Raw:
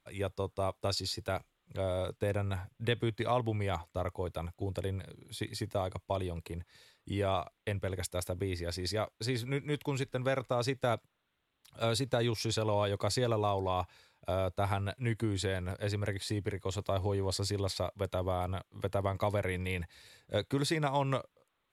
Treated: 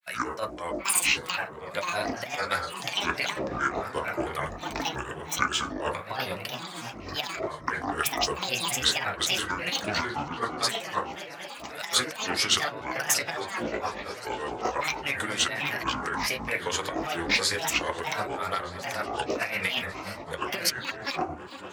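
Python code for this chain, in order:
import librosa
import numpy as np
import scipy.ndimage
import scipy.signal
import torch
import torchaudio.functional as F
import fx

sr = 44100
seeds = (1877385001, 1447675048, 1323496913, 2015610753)

y = fx.peak_eq(x, sr, hz=1700.0, db=15.0, octaves=1.8)
y = fx.rev_fdn(y, sr, rt60_s=0.51, lf_ratio=1.0, hf_ratio=0.35, size_ms=35.0, drr_db=0.5)
y = fx.over_compress(y, sr, threshold_db=-27.0, ratio=-0.5)
y = fx.riaa(y, sr, side='recording')
y = fx.echo_opening(y, sr, ms=244, hz=200, octaves=1, feedback_pct=70, wet_db=-3)
y = fx.granulator(y, sr, seeds[0], grain_ms=200.0, per_s=9.0, spray_ms=12.0, spread_st=12)
y = fx.doppler_dist(y, sr, depth_ms=0.14)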